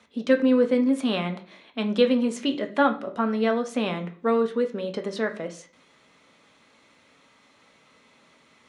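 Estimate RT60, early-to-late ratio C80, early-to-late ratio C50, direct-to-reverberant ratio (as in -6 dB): 0.45 s, 18.0 dB, 13.0 dB, 5.0 dB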